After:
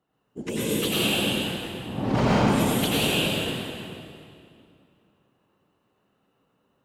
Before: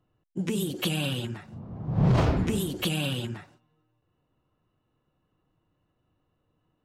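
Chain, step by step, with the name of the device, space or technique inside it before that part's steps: whispering ghost (whisper effect; high-pass 370 Hz 6 dB/octave; reverberation RT60 2.5 s, pre-delay 84 ms, DRR -7.5 dB)

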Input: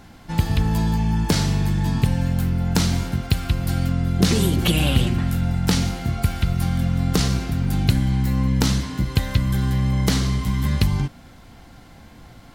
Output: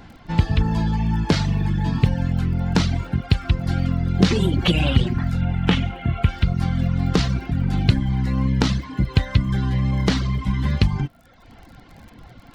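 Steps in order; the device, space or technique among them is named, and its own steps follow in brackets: lo-fi chain (low-pass 4.1 kHz 12 dB/octave; wow and flutter 15 cents; crackle 38 per s -38 dBFS); reverb removal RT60 0.9 s; 5.41–6.29 s: resonant high shelf 3.8 kHz -6.5 dB, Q 3; trim +2.5 dB

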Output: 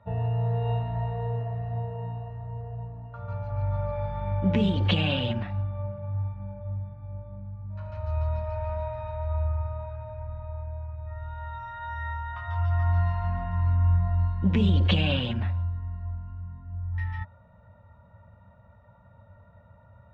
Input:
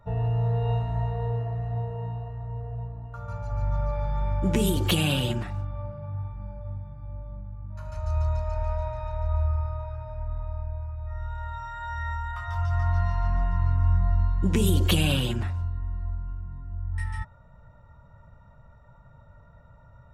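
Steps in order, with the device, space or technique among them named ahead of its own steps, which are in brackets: guitar cabinet (cabinet simulation 84–3700 Hz, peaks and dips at 95 Hz +7 dB, 140 Hz -8 dB, 200 Hz +5 dB, 360 Hz -10 dB, 570 Hz +3 dB, 1.3 kHz -4 dB)

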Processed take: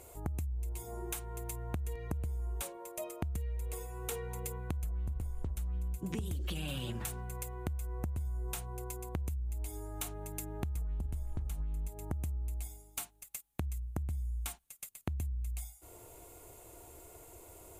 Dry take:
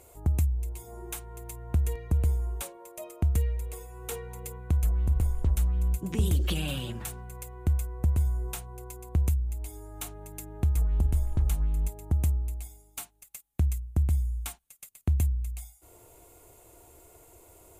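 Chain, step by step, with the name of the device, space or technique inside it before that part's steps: serial compression, leveller first (compression 3:1, threshold -28 dBFS, peak gain reduction 6.5 dB; compression, threshold -35 dBFS, peak gain reduction 9.5 dB); trim +1 dB

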